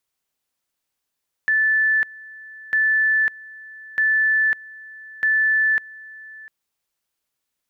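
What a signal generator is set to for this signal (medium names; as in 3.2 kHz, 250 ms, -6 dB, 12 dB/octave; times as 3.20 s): two-level tone 1.75 kHz -15 dBFS, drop 22 dB, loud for 0.55 s, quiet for 0.70 s, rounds 4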